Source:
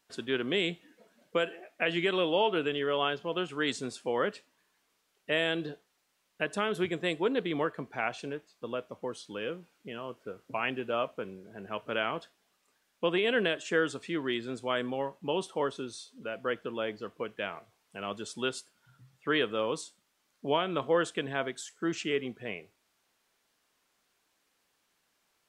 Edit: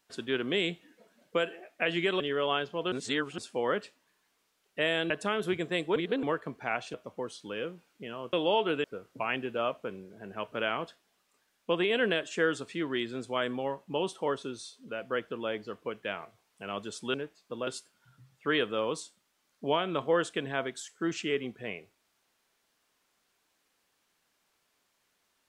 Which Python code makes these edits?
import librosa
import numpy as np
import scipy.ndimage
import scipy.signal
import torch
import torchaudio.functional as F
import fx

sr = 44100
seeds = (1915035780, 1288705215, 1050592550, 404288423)

y = fx.edit(x, sr, fx.move(start_s=2.2, length_s=0.51, to_s=10.18),
    fx.reverse_span(start_s=3.43, length_s=0.46),
    fx.cut(start_s=5.61, length_s=0.81),
    fx.reverse_span(start_s=7.28, length_s=0.27),
    fx.move(start_s=8.26, length_s=0.53, to_s=18.48), tone=tone)